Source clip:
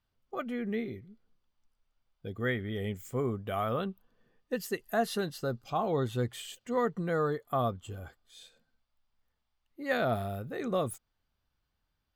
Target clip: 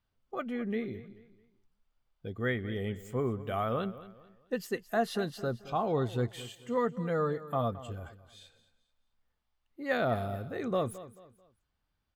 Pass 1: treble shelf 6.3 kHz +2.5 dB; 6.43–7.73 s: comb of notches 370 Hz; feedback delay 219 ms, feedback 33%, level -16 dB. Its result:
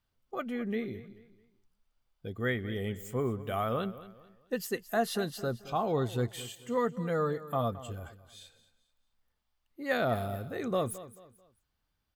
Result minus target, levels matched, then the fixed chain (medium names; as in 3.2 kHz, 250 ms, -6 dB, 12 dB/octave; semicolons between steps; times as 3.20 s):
8 kHz band +6.0 dB
treble shelf 6.3 kHz -7.5 dB; 6.43–7.73 s: comb of notches 370 Hz; feedback delay 219 ms, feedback 33%, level -16 dB